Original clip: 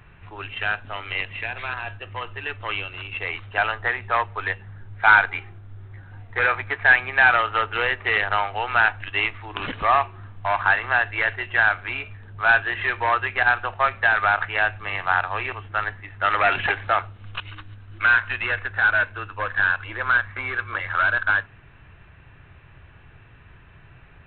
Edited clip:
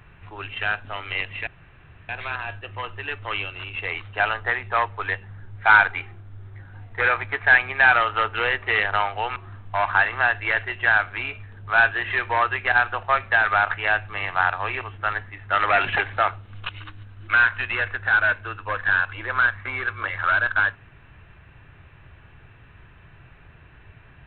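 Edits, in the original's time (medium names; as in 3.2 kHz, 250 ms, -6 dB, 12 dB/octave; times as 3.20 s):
1.47 s: insert room tone 0.62 s
8.74–10.07 s: delete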